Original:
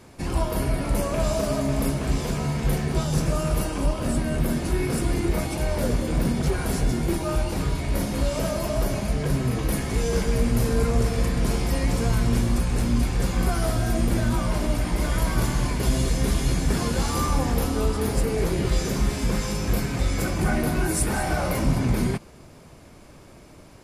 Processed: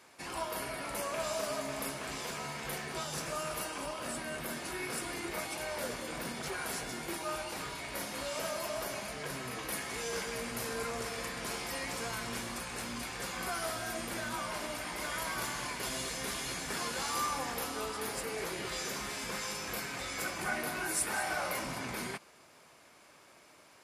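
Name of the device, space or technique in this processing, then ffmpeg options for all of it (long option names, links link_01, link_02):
filter by subtraction: -filter_complex "[0:a]asplit=2[link_01][link_02];[link_02]lowpass=1500,volume=-1[link_03];[link_01][link_03]amix=inputs=2:normalize=0,volume=-5.5dB"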